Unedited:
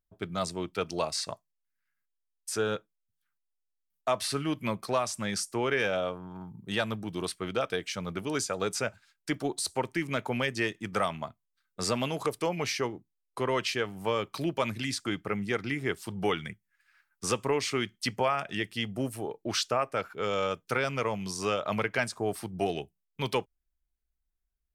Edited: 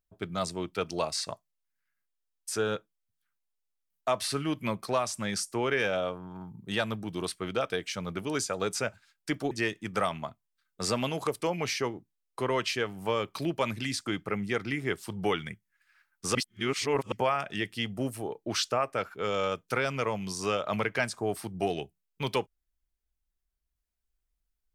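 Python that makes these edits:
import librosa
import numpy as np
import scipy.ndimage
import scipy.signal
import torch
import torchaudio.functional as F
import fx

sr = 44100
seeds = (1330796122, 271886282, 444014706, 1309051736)

y = fx.edit(x, sr, fx.cut(start_s=9.51, length_s=0.99),
    fx.reverse_span(start_s=17.34, length_s=0.77), tone=tone)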